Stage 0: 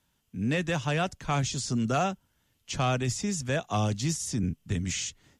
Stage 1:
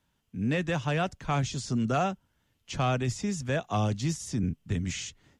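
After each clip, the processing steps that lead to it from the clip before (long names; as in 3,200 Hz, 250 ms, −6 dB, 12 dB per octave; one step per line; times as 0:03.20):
high-shelf EQ 4,500 Hz −8 dB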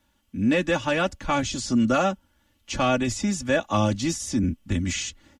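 comb filter 3.5 ms, depth 79%
level +5 dB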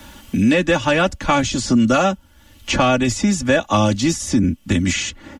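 multiband upward and downward compressor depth 70%
level +6.5 dB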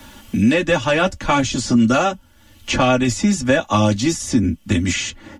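flanger 1.4 Hz, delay 7.5 ms, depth 2 ms, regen −43%
level +3.5 dB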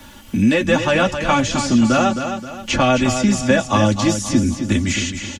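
repeating echo 264 ms, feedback 39%, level −8 dB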